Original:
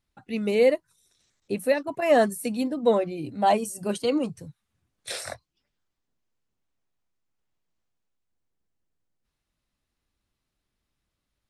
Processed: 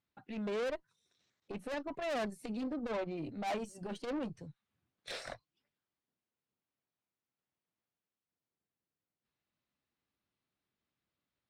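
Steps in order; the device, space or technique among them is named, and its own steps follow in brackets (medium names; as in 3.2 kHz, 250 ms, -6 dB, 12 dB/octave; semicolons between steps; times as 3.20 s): valve radio (band-pass 120–4300 Hz; valve stage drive 29 dB, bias 0.45; transformer saturation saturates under 140 Hz); trim -4 dB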